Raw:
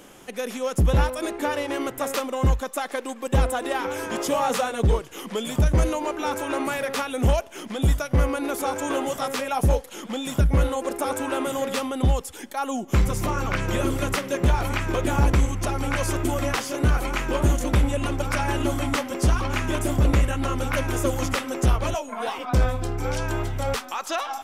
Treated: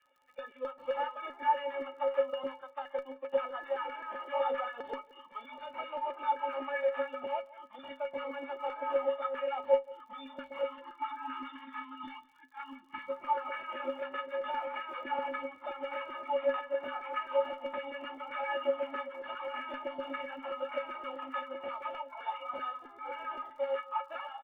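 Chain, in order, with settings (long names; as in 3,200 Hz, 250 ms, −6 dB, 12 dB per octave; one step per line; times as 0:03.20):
variable-slope delta modulation 16 kbit/s
gain on a spectral selection 0:10.66–0:13.08, 360–820 Hz −28 dB
noise reduction from a noise print of the clip's start 14 dB
auto-filter high-pass saw down 7.7 Hz 460–1,600 Hz
stiff-string resonator 260 Hz, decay 0.2 s, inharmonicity 0.03
single-tap delay 176 ms −21 dB
surface crackle 65 per second −59 dBFS
level +1.5 dB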